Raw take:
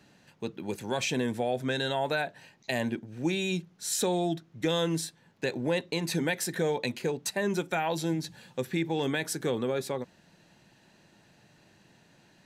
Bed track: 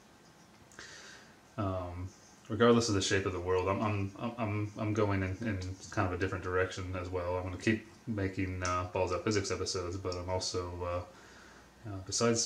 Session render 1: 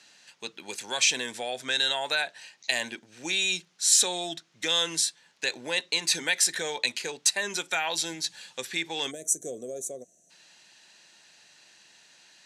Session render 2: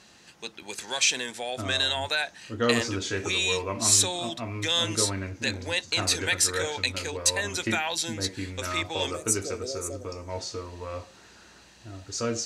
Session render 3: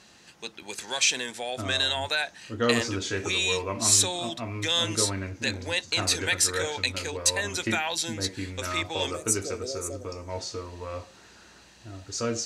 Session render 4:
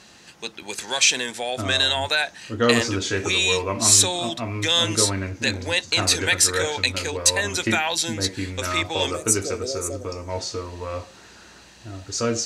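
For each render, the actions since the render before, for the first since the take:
9.11–10.3 spectral gain 740–5800 Hz -28 dB; weighting filter ITU-R 468
add bed track 0 dB
nothing audible
gain +5.5 dB; limiter -3 dBFS, peak gain reduction 1 dB

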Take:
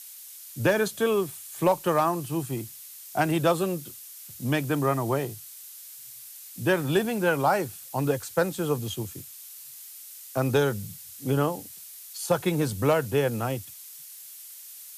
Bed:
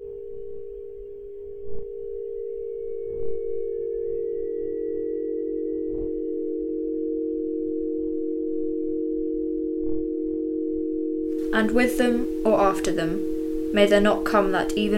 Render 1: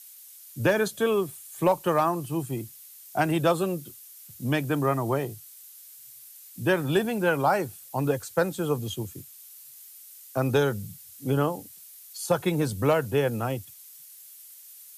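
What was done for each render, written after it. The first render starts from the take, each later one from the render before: denoiser 6 dB, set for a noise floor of -45 dBFS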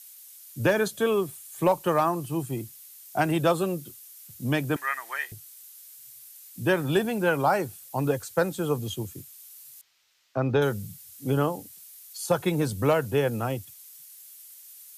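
4.76–5.32 resonant high-pass 1800 Hz, resonance Q 5.6; 9.81–10.62 air absorption 210 m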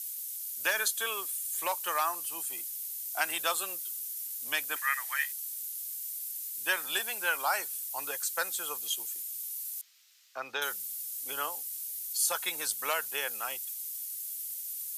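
HPF 1300 Hz 12 dB/oct; high shelf 5300 Hz +10.5 dB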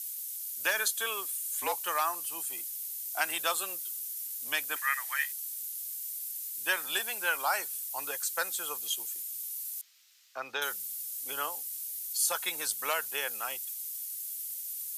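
1.38–1.84 frequency shift -71 Hz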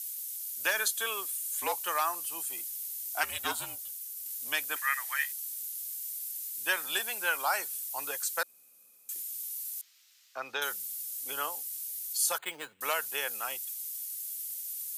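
3.23–4.26 ring modulator 240 Hz; 8.43–9.09 room tone; 12.38–12.81 careless resampling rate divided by 8×, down filtered, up hold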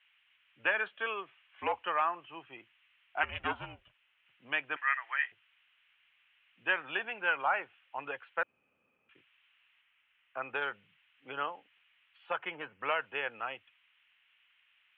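steep low-pass 3000 Hz 72 dB/oct; low shelf 120 Hz +11 dB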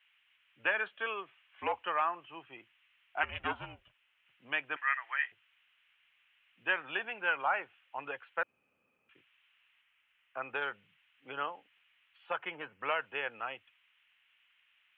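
gain -1 dB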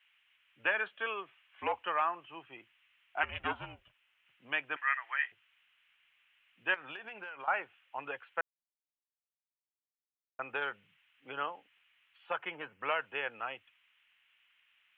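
6.74–7.48 compressor 12:1, threshold -40 dBFS; 8.41–10.39 mute

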